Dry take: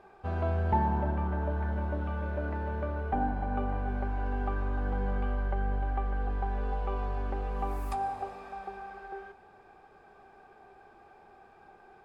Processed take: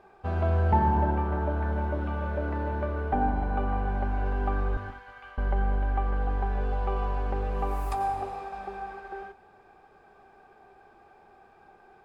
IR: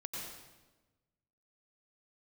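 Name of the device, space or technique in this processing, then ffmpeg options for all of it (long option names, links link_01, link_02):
keyed gated reverb: -filter_complex "[0:a]asettb=1/sr,asplit=3[link_01][link_02][link_03];[link_01]atrim=end=4.774[link_04];[link_02]atrim=start=4.77:end=5.38,asetpts=PTS-STARTPTS,afade=type=in:duration=0.004:curve=qsin,afade=type=out:start_time=0.606:duration=0.004:curve=qsin,highpass=1400[link_05];[link_03]atrim=start=5.376[link_06];[link_04][link_05]acrossfade=duration=0.004:curve1=hsin:curve2=qsin[link_07];[link_07][link_06]acrossfade=duration=0.004:curve1=qsin:curve2=hsin,asplit=3[link_08][link_09][link_10];[1:a]atrim=start_sample=2205[link_11];[link_09][link_11]afir=irnorm=-1:irlink=0[link_12];[link_10]apad=whole_len=531347[link_13];[link_12][link_13]sidechaingate=range=-33dB:threshold=-45dB:ratio=16:detection=peak,volume=-2dB[link_14];[link_08][link_14]amix=inputs=2:normalize=0"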